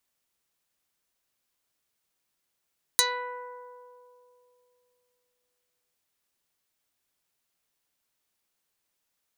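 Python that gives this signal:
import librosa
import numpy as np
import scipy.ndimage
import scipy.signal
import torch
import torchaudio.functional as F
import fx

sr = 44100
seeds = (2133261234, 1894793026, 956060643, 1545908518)

y = fx.pluck(sr, length_s=2.95, note=71, decay_s=3.0, pick=0.19, brightness='dark')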